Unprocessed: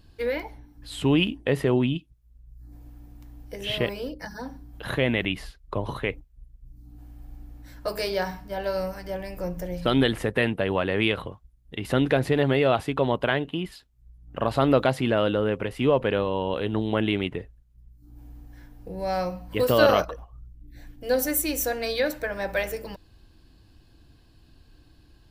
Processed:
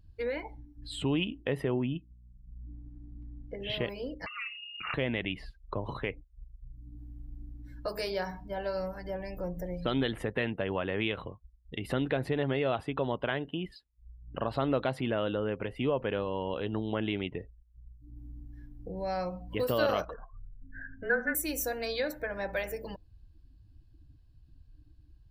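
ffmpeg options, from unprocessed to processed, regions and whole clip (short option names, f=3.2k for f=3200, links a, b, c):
-filter_complex "[0:a]asettb=1/sr,asplit=3[a][b][c];[a]atrim=end=1.744[d];[b]atrim=start=1.74:end=3.7,asetpts=PTS-STARTPTS,afade=t=in:d=0.004:c=qsin,afade=t=out:st=1.956:d=0.004:c=qsin,lowpass=2.6k,aeval=exprs='val(0)+0.00224*(sin(2*PI*60*n/s)+sin(2*PI*2*60*n/s)/2+sin(2*PI*3*60*n/s)/3+sin(2*PI*4*60*n/s)/4+sin(2*PI*5*60*n/s)/5)':c=same[e];[c]atrim=start=3.696[f];[d][e]acrossfade=d=0.004:c1=hsin:c2=qsin[g];[g][f]acrossfade=d=0.004:c1=qsin:c2=hsin,asettb=1/sr,asplit=3[h][i][j];[h]atrim=end=4.264[k];[i]atrim=start=4.26:end=4.94,asetpts=PTS-STARTPTS,afade=t=in:d=0.004:c=qsin,afade=t=out:st=0.676:d=0.004:c=qsin,highshelf=f=2.1k:g=6.5,lowpass=f=2.5k:t=q:w=0.5098,lowpass=f=2.5k:t=q:w=0.6013,lowpass=f=2.5k:t=q:w=0.9,lowpass=f=2.5k:t=q:w=2.563,afreqshift=-2900[l];[j]atrim=start=4.936[m];[k][l]acrossfade=d=0.004:c1=hsin:c2=qsin[n];[n][m]acrossfade=d=0.004:c1=qsin:c2=hsin,asettb=1/sr,asplit=3[o][p][q];[o]atrim=end=20.144[r];[p]atrim=start=20.14:end=21.35,asetpts=PTS-STARTPTS,afade=t=in:d=0.004:c=qsin,afade=t=out:st=1.206:d=0.004:c=qsin,lowpass=f=1.6k:t=q:w=13,afreqshift=-26[s];[q]atrim=start=21.346[t];[r][s]acrossfade=d=0.004:c1=hsin:c2=qsin[u];[u][t]acrossfade=d=0.004:c1=qsin:c2=hsin,afftdn=nr=19:nf=-45,acompressor=threshold=-41dB:ratio=1.5"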